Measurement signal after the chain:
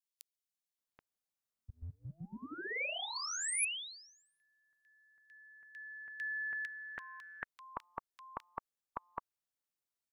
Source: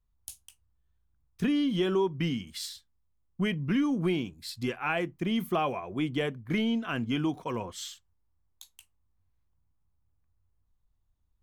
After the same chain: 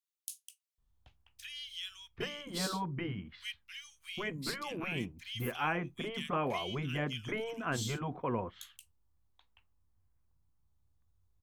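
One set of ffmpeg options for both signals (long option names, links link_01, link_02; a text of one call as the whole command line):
ffmpeg -i in.wav -filter_complex "[0:a]acrossover=split=2400[link_01][link_02];[link_01]adelay=780[link_03];[link_03][link_02]amix=inputs=2:normalize=0,afftfilt=real='re*lt(hypot(re,im),0.224)':imag='im*lt(hypot(re,im),0.224)':win_size=1024:overlap=0.75" out.wav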